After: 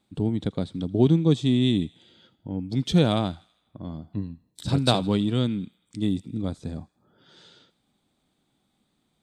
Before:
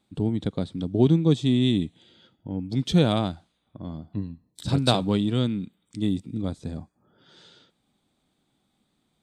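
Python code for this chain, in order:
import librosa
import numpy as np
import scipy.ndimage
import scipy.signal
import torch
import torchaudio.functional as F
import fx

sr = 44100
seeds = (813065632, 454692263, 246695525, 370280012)

y = fx.echo_wet_highpass(x, sr, ms=81, feedback_pct=54, hz=1700.0, wet_db=-20.5)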